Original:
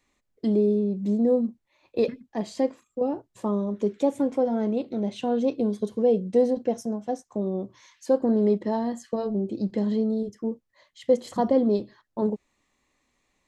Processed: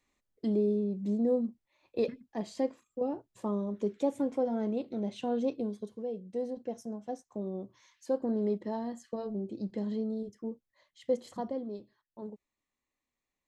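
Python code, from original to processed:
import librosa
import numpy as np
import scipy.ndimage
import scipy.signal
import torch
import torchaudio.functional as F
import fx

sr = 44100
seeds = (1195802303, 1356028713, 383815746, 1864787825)

y = fx.gain(x, sr, db=fx.line((5.46, -6.5), (6.11, -16.5), (7.03, -9.0), (11.23, -9.0), (11.67, -17.5)))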